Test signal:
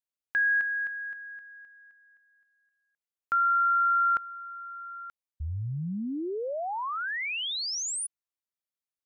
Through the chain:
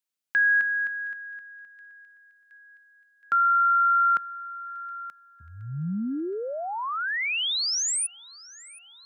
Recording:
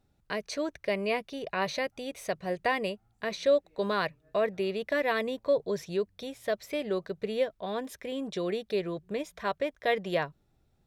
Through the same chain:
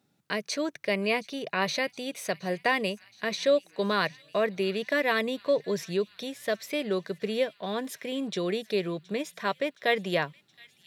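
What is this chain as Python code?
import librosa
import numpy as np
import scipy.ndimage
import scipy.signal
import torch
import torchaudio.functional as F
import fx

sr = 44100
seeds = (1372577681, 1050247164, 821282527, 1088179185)

p1 = scipy.signal.sosfilt(scipy.signal.butter(4, 150.0, 'highpass', fs=sr, output='sos'), x)
p2 = fx.peak_eq(p1, sr, hz=620.0, db=-5.5, octaves=2.3)
p3 = p2 + fx.echo_wet_highpass(p2, sr, ms=720, feedback_pct=68, hz=2200.0, wet_db=-20.5, dry=0)
y = p3 * librosa.db_to_amplitude(6.0)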